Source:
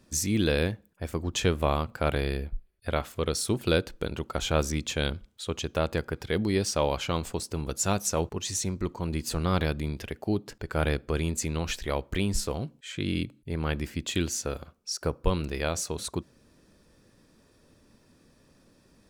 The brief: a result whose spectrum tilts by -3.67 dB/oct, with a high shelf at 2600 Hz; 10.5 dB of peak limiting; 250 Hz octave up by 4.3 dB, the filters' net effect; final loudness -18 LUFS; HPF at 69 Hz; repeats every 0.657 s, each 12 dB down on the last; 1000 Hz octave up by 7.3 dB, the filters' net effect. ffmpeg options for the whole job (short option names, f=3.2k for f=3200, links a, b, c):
-af "highpass=69,equalizer=f=250:t=o:g=5.5,equalizer=f=1k:t=o:g=8,highshelf=f=2.6k:g=6,alimiter=limit=-15dB:level=0:latency=1,aecho=1:1:657|1314|1971:0.251|0.0628|0.0157,volume=10.5dB"